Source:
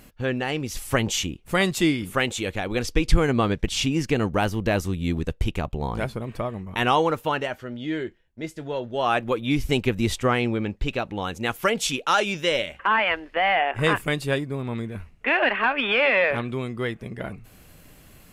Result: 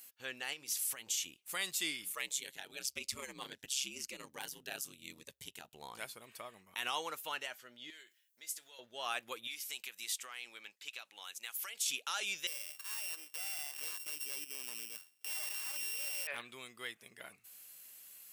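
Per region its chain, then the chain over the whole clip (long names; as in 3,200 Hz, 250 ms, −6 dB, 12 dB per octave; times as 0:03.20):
0:00.53–0:01.26: mains-hum notches 60/120/180/240/300/360/420 Hz + downward compressor 12 to 1, threshold −27 dBFS
0:02.12–0:05.74: ring modulation 67 Hz + phaser whose notches keep moving one way falling 1 Hz
0:07.90–0:08.79: downward compressor 12 to 1, threshold −35 dBFS + spectral tilt +3.5 dB per octave
0:09.47–0:11.86: high-pass filter 1,400 Hz 6 dB per octave + downward compressor 4 to 1, threshold −30 dBFS
0:12.47–0:16.27: samples sorted by size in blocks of 16 samples + high-pass filter 230 Hz 24 dB per octave
whole clip: high-pass filter 57 Hz; first difference; brickwall limiter −24 dBFS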